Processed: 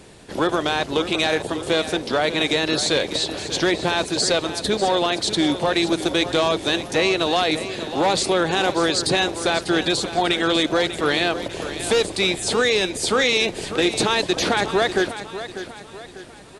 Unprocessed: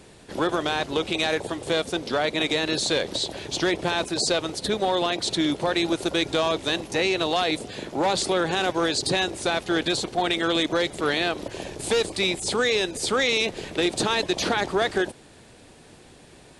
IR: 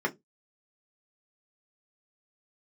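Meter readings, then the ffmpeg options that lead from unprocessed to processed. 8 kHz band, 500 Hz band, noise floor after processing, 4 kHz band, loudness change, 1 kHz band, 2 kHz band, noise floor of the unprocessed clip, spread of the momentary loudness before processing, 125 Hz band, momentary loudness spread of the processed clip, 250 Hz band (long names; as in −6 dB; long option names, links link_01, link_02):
+4.0 dB, +4.0 dB, −41 dBFS, +4.0 dB, +4.0 dB, +4.0 dB, +4.0 dB, −50 dBFS, 4 LU, +4.0 dB, 7 LU, +4.0 dB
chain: -af "aecho=1:1:595|1190|1785|2380:0.251|0.108|0.0464|0.02,volume=3.5dB"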